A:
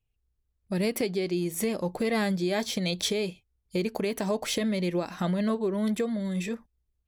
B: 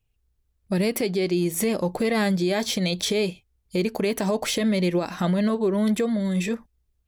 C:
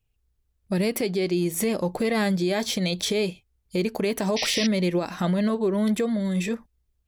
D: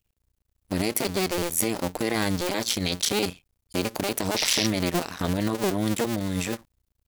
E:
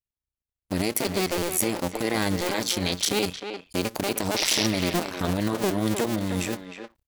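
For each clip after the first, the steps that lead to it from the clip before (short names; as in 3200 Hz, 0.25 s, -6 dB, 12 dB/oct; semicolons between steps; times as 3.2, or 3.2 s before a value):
limiter -21 dBFS, peak gain reduction 6 dB; gain +6 dB
painted sound noise, 4.36–4.67, 1800–6000 Hz -27 dBFS; gain -1 dB
cycle switcher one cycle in 2, muted; high shelf 3400 Hz +8 dB
speakerphone echo 0.31 s, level -7 dB; gate with hold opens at -51 dBFS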